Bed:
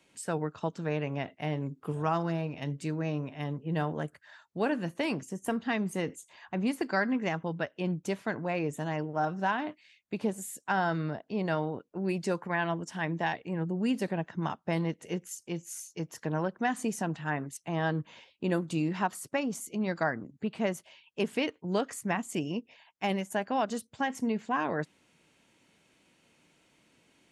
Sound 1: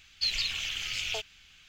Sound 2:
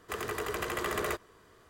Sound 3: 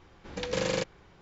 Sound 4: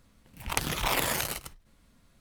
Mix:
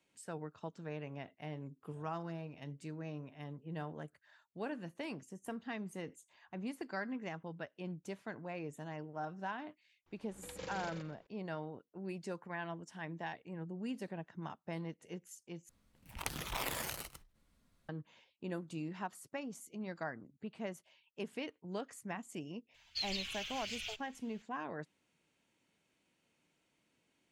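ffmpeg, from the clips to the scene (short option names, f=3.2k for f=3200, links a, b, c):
-filter_complex "[0:a]volume=-12dB[a];[3:a]asplit=2[b][c];[c]adelay=127,lowpass=f=4.7k:p=1,volume=-3.5dB,asplit=2[d][e];[e]adelay=127,lowpass=f=4.7k:p=1,volume=0.3,asplit=2[f][g];[g]adelay=127,lowpass=f=4.7k:p=1,volume=0.3,asplit=2[h][i];[i]adelay=127,lowpass=f=4.7k:p=1,volume=0.3[j];[b][d][f][h][j]amix=inputs=5:normalize=0[k];[1:a]asplit=2[l][m];[m]adelay=6,afreqshift=-1.3[n];[l][n]amix=inputs=2:normalize=1[o];[a]asplit=2[p][q];[p]atrim=end=15.694[r];[4:a]atrim=end=2.2,asetpts=PTS-STARTPTS,volume=-11dB[s];[q]atrim=start=17.886[t];[k]atrim=end=1.21,asetpts=PTS-STARTPTS,volume=-16.5dB,afade=t=in:d=0.004:c=hsin,afade=t=out:st=1.206:d=0.004:c=hsin,adelay=10060[u];[o]atrim=end=1.68,asetpts=PTS-STARTPTS,volume=-7dB,afade=t=in:d=0.004:c=hsin,afade=t=out:st=1.676:d=0.004:c=hsin,adelay=22740[v];[r][s]acrossfade=d=0.004:c1=hsin:c2=hsin[w];[w][t]acrossfade=d=0.004:c1=hsin:c2=hsin[x];[x][u][v]amix=inputs=3:normalize=0"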